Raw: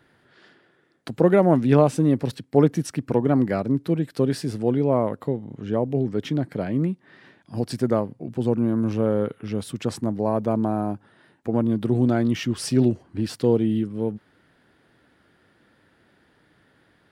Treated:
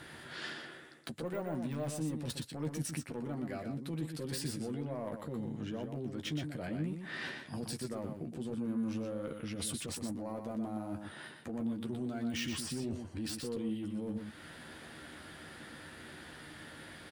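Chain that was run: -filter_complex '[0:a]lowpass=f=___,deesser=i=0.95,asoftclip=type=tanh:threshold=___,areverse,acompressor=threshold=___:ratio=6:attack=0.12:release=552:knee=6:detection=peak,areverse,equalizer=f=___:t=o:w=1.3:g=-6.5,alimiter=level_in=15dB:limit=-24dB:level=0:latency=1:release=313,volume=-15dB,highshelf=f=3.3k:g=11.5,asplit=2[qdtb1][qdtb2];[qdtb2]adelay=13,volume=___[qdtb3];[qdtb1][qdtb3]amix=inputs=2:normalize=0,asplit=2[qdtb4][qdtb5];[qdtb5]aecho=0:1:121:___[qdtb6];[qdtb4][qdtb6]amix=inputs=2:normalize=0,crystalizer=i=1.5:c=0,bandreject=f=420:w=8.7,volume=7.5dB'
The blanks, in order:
7.6k, -8.5dB, -31dB, 5.6k, -6.5dB, 0.473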